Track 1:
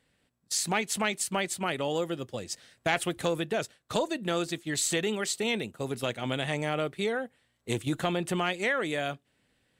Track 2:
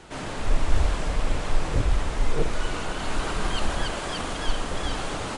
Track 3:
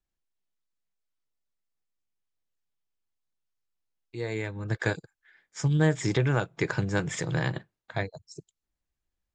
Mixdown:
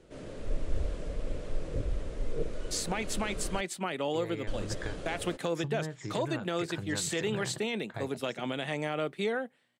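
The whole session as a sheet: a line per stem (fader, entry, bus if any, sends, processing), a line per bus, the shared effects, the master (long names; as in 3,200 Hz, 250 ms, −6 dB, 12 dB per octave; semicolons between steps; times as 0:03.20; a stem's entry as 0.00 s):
−1.0 dB, 2.20 s, bus A, no send, high-pass filter 150 Hz 24 dB per octave
−16.5 dB, 0.00 s, muted 0:03.61–0:04.47, no bus, no send, low shelf with overshoot 670 Hz +6.5 dB, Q 3
−5.5 dB, 0.00 s, bus A, no send, downward compressor 4 to 1, threshold −30 dBFS, peak gain reduction 10.5 dB
bus A: 0.0 dB, high-shelf EQ 6,000 Hz −7.5 dB; brickwall limiter −21 dBFS, peak gain reduction 9 dB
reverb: not used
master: no processing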